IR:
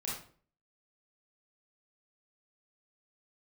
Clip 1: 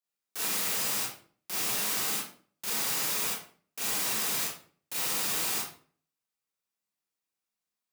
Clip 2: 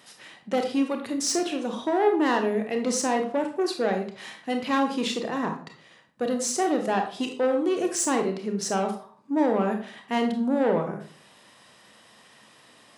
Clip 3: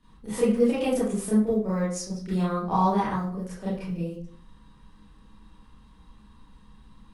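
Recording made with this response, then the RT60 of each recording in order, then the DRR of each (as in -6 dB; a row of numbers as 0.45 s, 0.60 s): 1; 0.45 s, 0.45 s, 0.45 s; -6.0 dB, 4.0 dB, -11.0 dB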